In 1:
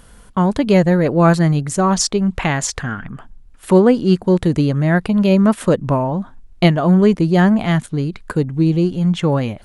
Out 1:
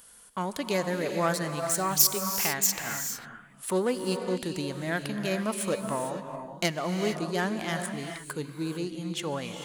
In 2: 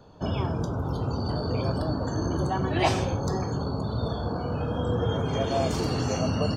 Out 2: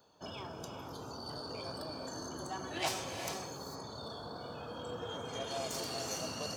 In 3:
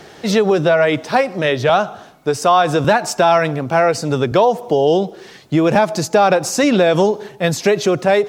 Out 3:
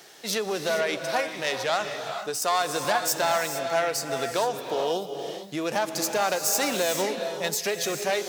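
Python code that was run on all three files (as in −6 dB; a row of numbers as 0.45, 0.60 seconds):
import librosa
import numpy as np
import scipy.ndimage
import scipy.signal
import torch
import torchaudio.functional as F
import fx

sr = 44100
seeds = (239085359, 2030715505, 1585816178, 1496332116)

y = fx.self_delay(x, sr, depth_ms=0.076)
y = fx.riaa(y, sr, side='recording')
y = fx.rev_gated(y, sr, seeds[0], gate_ms=480, shape='rising', drr_db=5.5)
y = y * librosa.db_to_amplitude(-11.5)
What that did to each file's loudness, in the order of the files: −13.0, −13.0, −11.0 LU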